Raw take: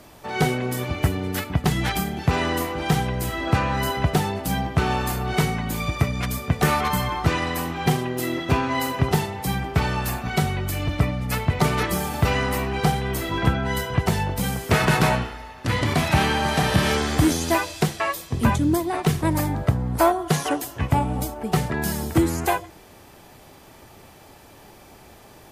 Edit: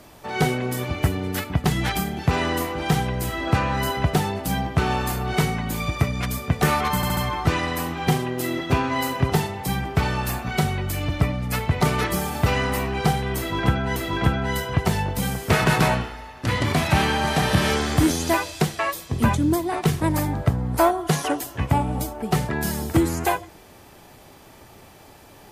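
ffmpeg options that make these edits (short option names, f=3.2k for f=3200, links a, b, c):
-filter_complex "[0:a]asplit=5[a][b][c][d][e];[a]atrim=end=7.032[f];[b]atrim=start=6.958:end=7.032[g];[c]atrim=start=6.958:end=7.032[h];[d]atrim=start=6.958:end=13.752[i];[e]atrim=start=13.168[j];[f][g]acrossfade=d=0.004:c1=hsin:c2=hsin[k];[k][h]acrossfade=d=0.004:c1=hsin:c2=hsin[l];[l][i]acrossfade=d=0.004:c1=hsin:c2=hsin[m];[m][j]acrossfade=d=0.004:c1=hsin:c2=hsin"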